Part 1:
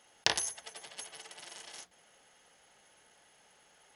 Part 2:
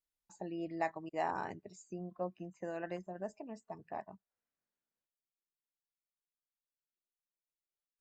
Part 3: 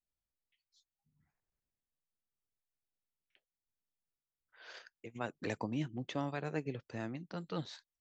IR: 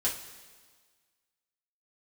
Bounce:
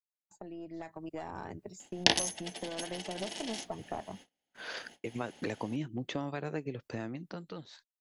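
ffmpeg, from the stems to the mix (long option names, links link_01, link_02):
-filter_complex "[0:a]firequalizer=gain_entry='entry(120,0);entry(270,11);entry(430,-2);entry(740,0);entry(1200,-12);entry(1800,-4);entry(3000,0);entry(8300,-7)':delay=0.05:min_phase=1,adelay=1800,volume=0dB[link_01];[1:a]equalizer=frequency=88:width=2.1:gain=11,acrossover=split=230|3000[link_02][link_03][link_04];[link_03]acompressor=threshold=-38dB:ratio=6[link_05];[link_02][link_05][link_04]amix=inputs=3:normalize=0,aeval=exprs='(tanh(35.5*val(0)+0.5)-tanh(0.5))/35.5':channel_layout=same,volume=1dB[link_06];[2:a]volume=1.5dB[link_07];[link_06][link_07]amix=inputs=2:normalize=0,equalizer=frequency=360:width=0.91:gain=2.5,acompressor=threshold=-44dB:ratio=4,volume=0dB[link_08];[link_01][link_08]amix=inputs=2:normalize=0,agate=range=-32dB:threshold=-60dB:ratio=16:detection=peak,dynaudnorm=framelen=110:gausssize=17:maxgain=9.5dB"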